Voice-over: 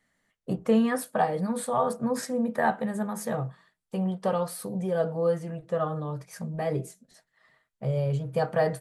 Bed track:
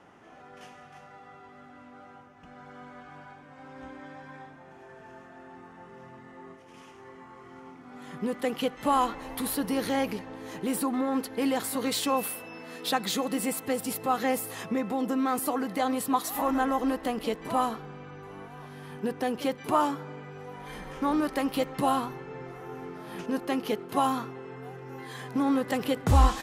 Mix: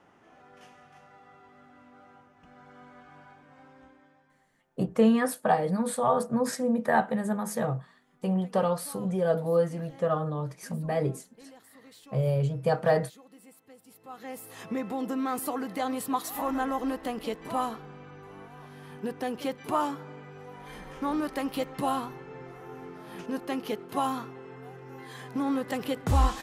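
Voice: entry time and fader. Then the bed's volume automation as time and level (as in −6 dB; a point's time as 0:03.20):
4.30 s, +1.0 dB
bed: 0:03.57 −5 dB
0:04.46 −24.5 dB
0:13.84 −24.5 dB
0:14.72 −3 dB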